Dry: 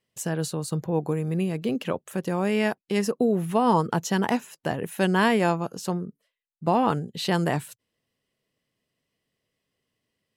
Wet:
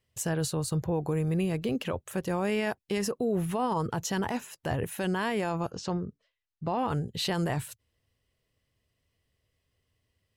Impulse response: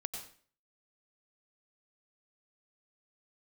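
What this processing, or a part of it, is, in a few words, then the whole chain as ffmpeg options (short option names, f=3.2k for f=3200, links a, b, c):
car stereo with a boomy subwoofer: -filter_complex "[0:a]lowshelf=f=120:t=q:w=1.5:g=13.5,alimiter=limit=-21dB:level=0:latency=1:release=27,asplit=3[a][b][c];[a]afade=t=out:st=5.7:d=0.02[d];[b]lowpass=f=6.1k:w=0.5412,lowpass=f=6.1k:w=1.3066,afade=t=in:st=5.7:d=0.02,afade=t=out:st=6.77:d=0.02[e];[c]afade=t=in:st=6.77:d=0.02[f];[d][e][f]amix=inputs=3:normalize=0"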